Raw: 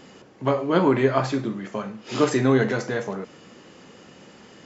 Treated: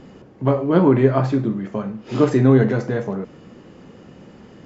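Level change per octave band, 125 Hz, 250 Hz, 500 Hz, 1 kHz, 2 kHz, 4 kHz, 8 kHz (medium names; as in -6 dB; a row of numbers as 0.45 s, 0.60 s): +8.5 dB, +6.0 dB, +3.5 dB, 0.0 dB, -2.5 dB, -5.5 dB, no reading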